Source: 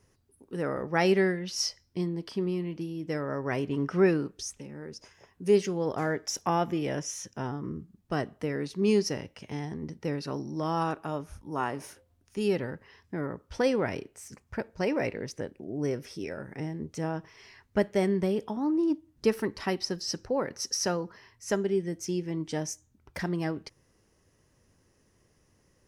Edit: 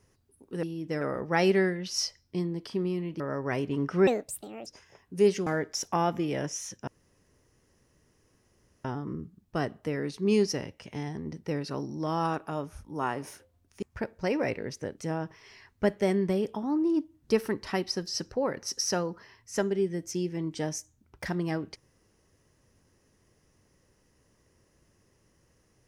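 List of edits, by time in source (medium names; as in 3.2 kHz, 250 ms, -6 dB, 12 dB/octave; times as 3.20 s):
2.82–3.20 s: move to 0.63 s
4.07–4.95 s: speed 148%
5.75–6.00 s: delete
7.41 s: insert room tone 1.97 s
12.39–14.39 s: delete
15.54–16.91 s: delete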